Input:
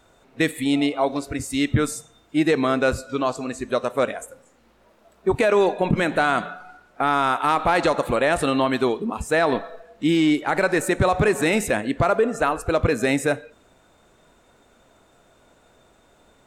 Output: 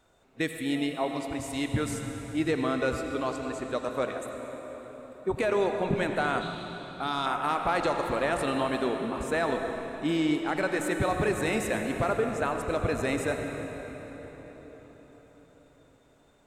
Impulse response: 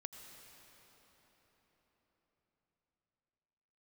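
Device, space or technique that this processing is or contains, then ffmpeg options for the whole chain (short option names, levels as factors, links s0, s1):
cathedral: -filter_complex "[1:a]atrim=start_sample=2205[s0];[0:a][s0]afir=irnorm=-1:irlink=0,asettb=1/sr,asplit=3[s1][s2][s3];[s1]atrim=end=6.414[s4];[s2]atrim=start=6.41:end=7.26,asetpts=PTS-STARTPTS,afade=t=in:d=0.004:c=qsin,afade=t=out:st=0.846:d=0.004:c=qsin,equalizer=f=500:t=o:w=1:g=-5,equalizer=f=2000:t=o:w=1:g=-8,equalizer=f=4000:t=o:w=1:g=12[s5];[s3]atrim=start=7.256[s6];[s4][s5]acrossfade=d=0.004:c1=hsin:c2=qsin[s7];[s7][s6]acrossfade=d=0.004:c1=qsin:c2=hsin,volume=0.668"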